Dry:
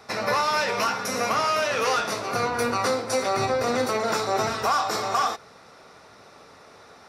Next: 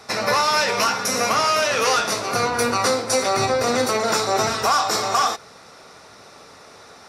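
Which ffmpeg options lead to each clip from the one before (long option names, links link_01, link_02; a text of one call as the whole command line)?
ffmpeg -i in.wav -af "equalizer=frequency=7800:width_type=o:width=1.9:gain=6,volume=3.5dB" out.wav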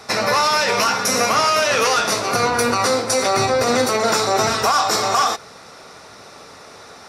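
ffmpeg -i in.wav -af "alimiter=limit=-11.5dB:level=0:latency=1:release=84,volume=4dB" out.wav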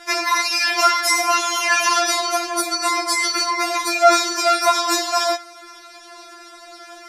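ffmpeg -i in.wav -af "afftfilt=real='re*4*eq(mod(b,16),0)':imag='im*4*eq(mod(b,16),0)':win_size=2048:overlap=0.75,volume=3dB" out.wav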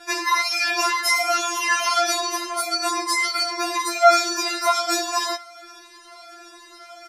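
ffmpeg -i in.wav -filter_complex "[0:a]asplit=2[link_01][link_02];[link_02]adelay=3.7,afreqshift=1.4[link_03];[link_01][link_03]amix=inputs=2:normalize=1" out.wav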